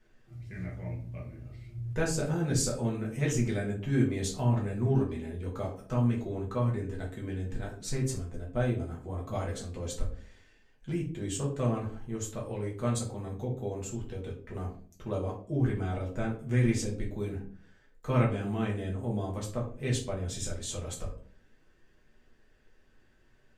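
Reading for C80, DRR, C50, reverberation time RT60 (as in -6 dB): 12.5 dB, -4.0 dB, 8.0 dB, 0.45 s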